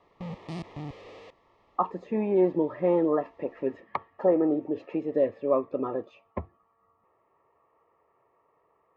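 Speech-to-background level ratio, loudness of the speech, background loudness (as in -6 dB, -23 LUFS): 13.0 dB, -28.0 LUFS, -41.0 LUFS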